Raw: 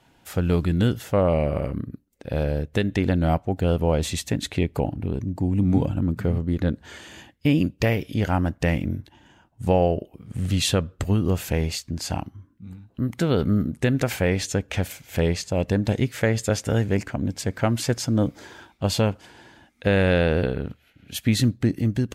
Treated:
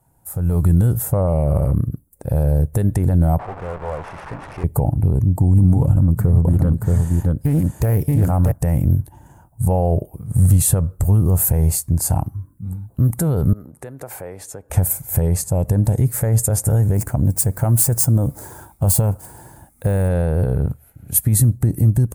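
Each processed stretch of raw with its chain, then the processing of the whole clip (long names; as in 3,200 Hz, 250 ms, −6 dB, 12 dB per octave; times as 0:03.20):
0:03.39–0:04.64: linear delta modulator 16 kbit/s, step −23 dBFS + high-pass filter 920 Hz 6 dB per octave + tube saturation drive 24 dB, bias 0.6
0:05.82–0:08.52: single-tap delay 628 ms −5 dB + highs frequency-modulated by the lows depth 0.3 ms
0:13.53–0:14.70: downward compressor 3 to 1, threshold −33 dBFS + three-way crossover with the lows and the highs turned down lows −18 dB, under 320 Hz, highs −12 dB, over 5,000 Hz
0:16.94–0:20.09: running median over 3 samples + high-shelf EQ 6,500 Hz +6.5 dB
whole clip: brickwall limiter −17 dBFS; drawn EQ curve 140 Hz 0 dB, 240 Hz −12 dB, 890 Hz −6 dB, 3,100 Hz −28 dB, 6,100 Hz −13 dB, 9,400 Hz +7 dB; automatic gain control gain up to 12 dB; level +2.5 dB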